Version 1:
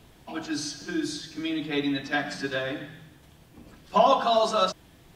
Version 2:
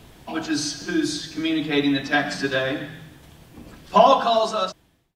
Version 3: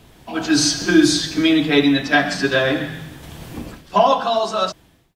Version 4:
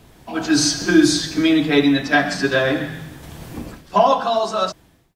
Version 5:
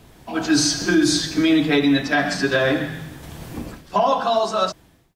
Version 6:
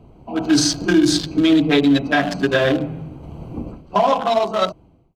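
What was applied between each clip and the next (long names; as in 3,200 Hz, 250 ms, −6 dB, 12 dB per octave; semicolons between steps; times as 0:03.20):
fade-out on the ending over 1.25 s; level +6.5 dB
automatic gain control gain up to 16 dB; level −1 dB
parametric band 3,100 Hz −3.5 dB 0.77 octaves
brickwall limiter −8.5 dBFS, peak gain reduction 6.5 dB
adaptive Wiener filter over 25 samples; parametric band 3,200 Hz +4.5 dB 0.4 octaves; level +3 dB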